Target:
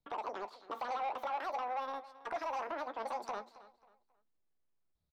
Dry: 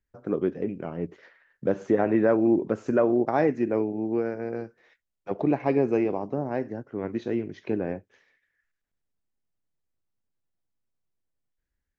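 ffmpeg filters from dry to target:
-filter_complex "[0:a]highshelf=f=2800:g=-10,bandreject=f=50:t=h:w=6,bandreject=f=100:t=h:w=6,acrossover=split=270|660|1800[s0][s1][s2][s3];[s0]acompressor=threshold=0.00794:ratio=6[s4];[s4][s1][s2][s3]amix=inputs=4:normalize=0,alimiter=limit=0.106:level=0:latency=1,acrossover=split=390|3000[s5][s6][s7];[s6]acompressor=threshold=0.00708:ratio=6[s8];[s5][s8][s7]amix=inputs=3:normalize=0,asoftclip=type=tanh:threshold=0.0335,asplit=2[s9][s10];[s10]adelay=31,volume=0.282[s11];[s9][s11]amix=inputs=2:normalize=0,asplit=2[s12][s13];[s13]adelay=631,lowpass=f=2200:p=1,volume=0.141,asplit=2[s14][s15];[s15]adelay=631,lowpass=f=2200:p=1,volume=0.32,asplit=2[s16][s17];[s17]adelay=631,lowpass=f=2200:p=1,volume=0.32[s18];[s12][s14][s16][s18]amix=inputs=4:normalize=0,asetrate=103194,aresample=44100,volume=0.75"

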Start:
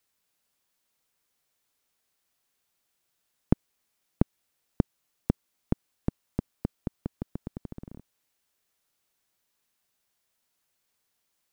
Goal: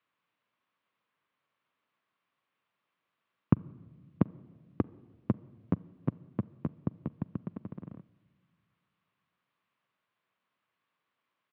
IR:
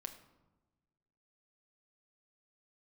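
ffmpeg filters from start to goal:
-filter_complex "[0:a]asplit=2[s0][s1];[s1]asetrate=33038,aresample=44100,atempo=1.33484,volume=0.631[s2];[s0][s2]amix=inputs=2:normalize=0,highpass=f=110:w=0.5412,highpass=f=110:w=1.3066,equalizer=f=400:t=q:w=4:g=-3,equalizer=f=790:t=q:w=4:g=-4,equalizer=f=1100:t=q:w=4:g=8,lowpass=f=3000:w=0.5412,lowpass=f=3000:w=1.3066,asplit=2[s3][s4];[1:a]atrim=start_sample=2205,asetrate=24696,aresample=44100[s5];[s4][s5]afir=irnorm=-1:irlink=0,volume=0.237[s6];[s3][s6]amix=inputs=2:normalize=0,volume=0.75"

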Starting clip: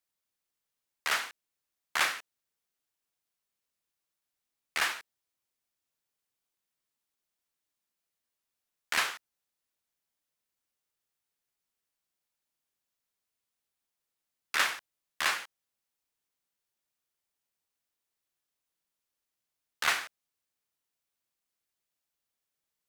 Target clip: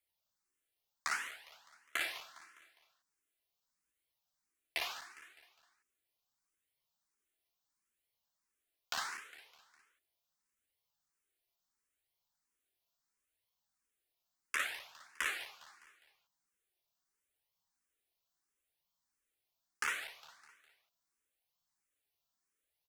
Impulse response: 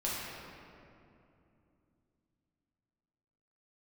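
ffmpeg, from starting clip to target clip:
-filter_complex "[0:a]acompressor=threshold=0.0224:ratio=6,flanger=delay=0.9:depth=2.1:regen=50:speed=0.74:shape=sinusoidal,aecho=1:1:204|408|612|816:0.178|0.0854|0.041|0.0197,asplit=2[s0][s1];[s1]afreqshift=1.5[s2];[s0][s2]amix=inputs=2:normalize=1,volume=2"

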